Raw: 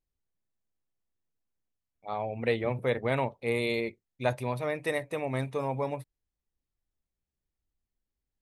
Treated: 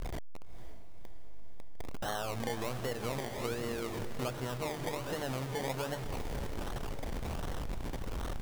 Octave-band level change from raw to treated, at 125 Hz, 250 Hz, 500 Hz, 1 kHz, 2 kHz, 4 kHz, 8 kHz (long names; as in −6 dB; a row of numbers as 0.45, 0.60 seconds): −2.5, −3.5, −7.0, −3.5, −6.5, +0.5, +8.5 decibels